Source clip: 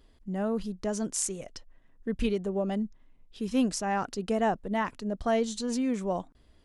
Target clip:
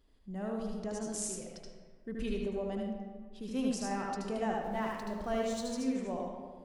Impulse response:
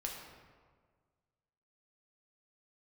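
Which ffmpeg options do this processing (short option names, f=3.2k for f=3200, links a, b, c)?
-filter_complex "[0:a]asettb=1/sr,asplit=3[a][b][c];[a]atrim=end=4.544[d];[b]atrim=start=4.54:end=5.75,asetpts=PTS-STARTPTS,afade=t=in:d=0.004:c=qsin,afade=t=out:st=1.206:d=0.004:c=qsin,aeval=exprs='val(0)+0.5*0.00708*sgn(val(0))':c=same[e];[c]atrim=start=5.746[f];[d][e]acrossfade=d=0.004:c1=hsin:c2=qsin[g];[g][f]acrossfade=d=0.004:c1=qsin:c2=hsin,bandreject=f=115.5:t=h:w=4,bandreject=f=231:t=h:w=4,bandreject=f=346.5:t=h:w=4,bandreject=f=462:t=h:w=4,bandreject=f=577.5:t=h:w=4,bandreject=f=693:t=h:w=4,bandreject=f=808.5:t=h:w=4,bandreject=f=924:t=h:w=4,bandreject=f=1.0395k:t=h:w=4,bandreject=f=1.155k:t=h:w=4,bandreject=f=1.2705k:t=h:w=4,bandreject=f=1.386k:t=h:w=4,bandreject=f=1.5015k:t=h:w=4,bandreject=f=1.617k:t=h:w=4,bandreject=f=1.7325k:t=h:w=4,bandreject=f=1.848k:t=h:w=4,bandreject=f=1.9635k:t=h:w=4,bandreject=f=2.079k:t=h:w=4,bandreject=f=2.1945k:t=h:w=4,bandreject=f=2.31k:t=h:w=4,bandreject=f=2.4255k:t=h:w=4,bandreject=f=2.541k:t=h:w=4,bandreject=f=2.6565k:t=h:w=4,bandreject=f=2.772k:t=h:w=4,bandreject=f=2.8875k:t=h:w=4,bandreject=f=3.003k:t=h:w=4,bandreject=f=3.1185k:t=h:w=4,bandreject=f=3.234k:t=h:w=4,bandreject=f=3.3495k:t=h:w=4,bandreject=f=3.465k:t=h:w=4,asplit=2[h][i];[1:a]atrim=start_sample=2205,adelay=76[j];[i][j]afir=irnorm=-1:irlink=0,volume=0.5dB[k];[h][k]amix=inputs=2:normalize=0,volume=-9dB"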